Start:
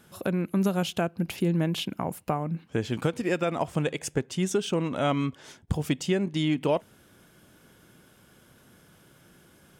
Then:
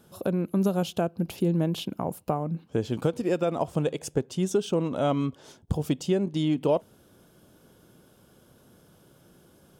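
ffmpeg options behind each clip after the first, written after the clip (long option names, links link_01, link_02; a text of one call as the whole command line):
ffmpeg -i in.wav -af "equalizer=frequency=500:width_type=o:width=1:gain=3,equalizer=frequency=2000:width_type=o:width=1:gain=-10,equalizer=frequency=8000:width_type=o:width=1:gain=-3" out.wav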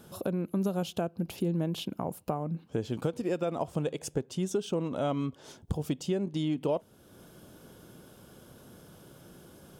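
ffmpeg -i in.wav -af "acompressor=threshold=-49dB:ratio=1.5,volume=4.5dB" out.wav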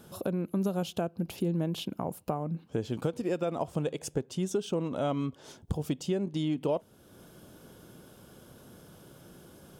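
ffmpeg -i in.wav -af anull out.wav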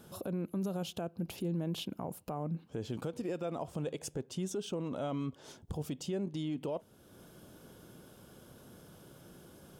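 ffmpeg -i in.wav -af "alimiter=level_in=2dB:limit=-24dB:level=0:latency=1:release=22,volume=-2dB,volume=-2.5dB" out.wav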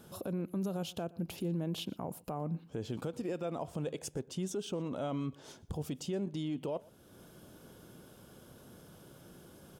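ffmpeg -i in.wav -af "aecho=1:1:120:0.0708" out.wav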